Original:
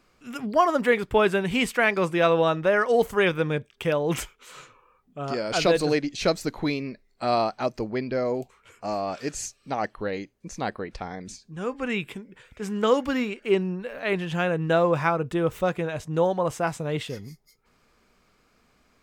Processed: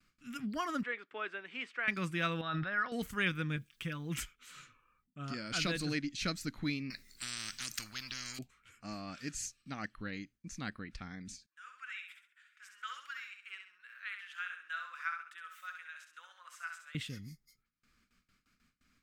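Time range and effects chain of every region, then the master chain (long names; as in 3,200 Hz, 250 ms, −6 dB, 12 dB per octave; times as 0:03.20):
0:00.83–0:01.88: high-pass filter 410 Hz 24 dB per octave + head-to-tape spacing loss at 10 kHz 31 dB
0:02.41–0:02.92: Chebyshev low-pass with heavy ripple 5,400 Hz, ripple 9 dB + parametric band 740 Hz +12.5 dB 0.27 octaves + level that may fall only so fast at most 34 dB per second
0:03.56–0:04.17: comb filter 6 ms, depth 72% + downward compressor 1.5 to 1, threshold −35 dBFS + bit-depth reduction 12 bits, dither triangular
0:06.90–0:08.39: bass and treble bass −3 dB, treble +10 dB + every bin compressed towards the loudest bin 10 to 1
0:11.46–0:16.95: four-pole ladder high-pass 1,200 Hz, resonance 50% + repeating echo 66 ms, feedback 36%, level −6 dB
whole clip: noise gate with hold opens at −53 dBFS; flat-topped bell 610 Hz −15 dB; level −7 dB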